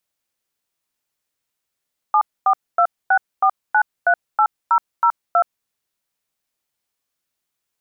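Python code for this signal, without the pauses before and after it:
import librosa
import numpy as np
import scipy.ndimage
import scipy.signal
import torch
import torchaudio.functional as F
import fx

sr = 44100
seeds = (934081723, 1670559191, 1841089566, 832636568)

y = fx.dtmf(sr, digits='74264938002', tone_ms=73, gap_ms=248, level_db=-14.0)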